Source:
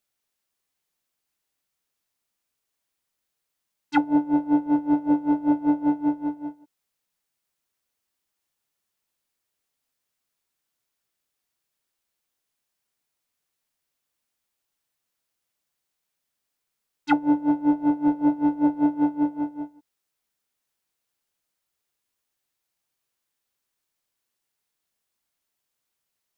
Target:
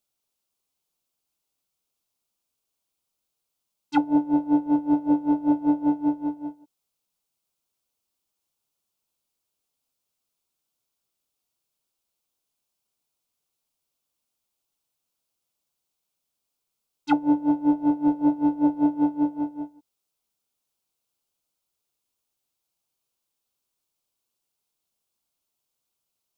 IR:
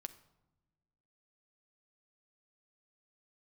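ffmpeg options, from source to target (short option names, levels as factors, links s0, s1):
-af "equalizer=f=1800:t=o:w=0.55:g=-12"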